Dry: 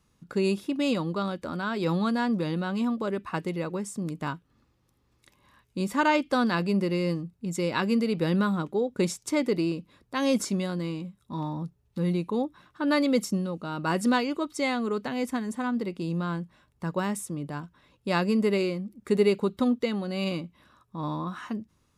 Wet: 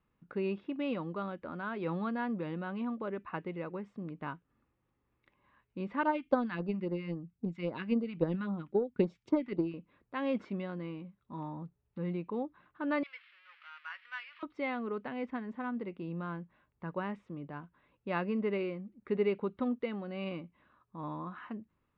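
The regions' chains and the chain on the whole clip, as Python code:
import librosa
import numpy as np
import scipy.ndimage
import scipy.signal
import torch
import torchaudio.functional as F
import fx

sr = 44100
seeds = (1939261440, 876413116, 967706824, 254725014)

y = fx.chain(x, sr, fx.phaser_stages(stages=2, low_hz=450.0, high_hz=2700.0, hz=3.7, feedback_pct=10),
    fx.transient(attack_db=9, sustain_db=-1), at=(6.03, 9.74))
y = fx.chain(y, sr, fx.crossing_spikes(level_db=-21.5),
    fx.highpass(hz=1500.0, slope=24),
    fx.resample_bad(factor=6, down='filtered', up='hold'), at=(13.03, 14.43))
y = scipy.signal.sosfilt(scipy.signal.butter(4, 2700.0, 'lowpass', fs=sr, output='sos'), y)
y = fx.peak_eq(y, sr, hz=84.0, db=-4.5, octaves=2.7)
y = F.gain(torch.from_numpy(y), -7.0).numpy()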